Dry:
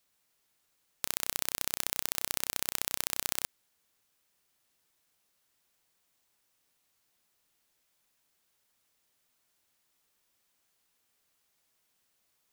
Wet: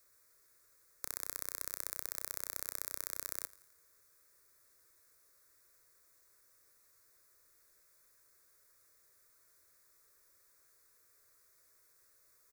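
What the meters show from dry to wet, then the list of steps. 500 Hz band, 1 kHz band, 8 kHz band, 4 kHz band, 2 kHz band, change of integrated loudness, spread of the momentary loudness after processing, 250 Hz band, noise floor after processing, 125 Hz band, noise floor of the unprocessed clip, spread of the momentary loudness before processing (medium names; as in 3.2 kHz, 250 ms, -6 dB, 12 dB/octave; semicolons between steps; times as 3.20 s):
-7.5 dB, -9.5 dB, -8.0 dB, -14.0 dB, -9.5 dB, -7.5 dB, 4 LU, -13.5 dB, -69 dBFS, -10.5 dB, -76 dBFS, 4 LU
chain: integer overflow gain 15.5 dB; static phaser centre 810 Hz, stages 6; feedback delay 85 ms, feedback 55%, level -21 dB; trim +8 dB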